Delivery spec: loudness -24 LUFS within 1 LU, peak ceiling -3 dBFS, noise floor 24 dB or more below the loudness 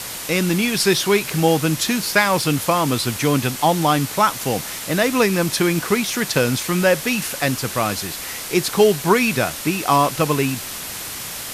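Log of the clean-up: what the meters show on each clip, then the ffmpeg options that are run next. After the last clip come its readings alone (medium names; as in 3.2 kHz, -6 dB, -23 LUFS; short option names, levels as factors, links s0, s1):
noise floor -31 dBFS; noise floor target -43 dBFS; loudness -19.0 LUFS; peak level -2.5 dBFS; loudness target -24.0 LUFS
-> -af "afftdn=nr=12:nf=-31"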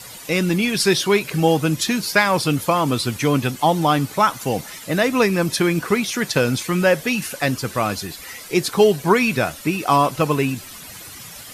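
noise floor -38 dBFS; noise floor target -44 dBFS
-> -af "afftdn=nr=6:nf=-38"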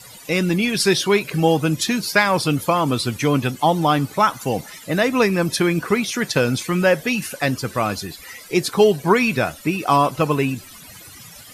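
noise floor -42 dBFS; noise floor target -44 dBFS
-> -af "afftdn=nr=6:nf=-42"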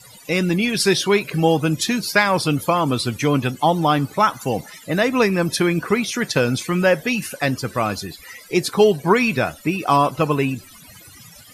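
noise floor -45 dBFS; loudness -19.5 LUFS; peak level -3.0 dBFS; loudness target -24.0 LUFS
-> -af "volume=0.596"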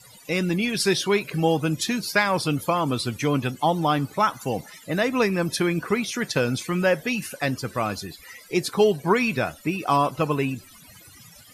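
loudness -24.0 LUFS; peak level -7.5 dBFS; noise floor -49 dBFS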